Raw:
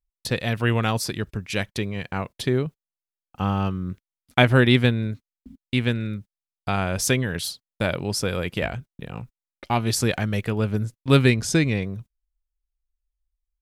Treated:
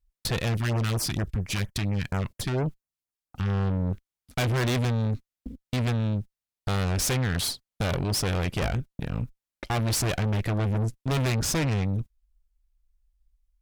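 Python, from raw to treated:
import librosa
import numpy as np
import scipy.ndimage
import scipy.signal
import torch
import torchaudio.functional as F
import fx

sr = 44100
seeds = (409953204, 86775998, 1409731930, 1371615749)

y = fx.low_shelf(x, sr, hz=100.0, db=12.0)
y = fx.tube_stage(y, sr, drive_db=30.0, bias=0.7)
y = fx.filter_lfo_notch(y, sr, shape='sine', hz=4.3, low_hz=460.0, high_hz=4200.0, q=0.79, at=(0.53, 3.47), fade=0.02)
y = F.gain(torch.from_numpy(y), 6.5).numpy()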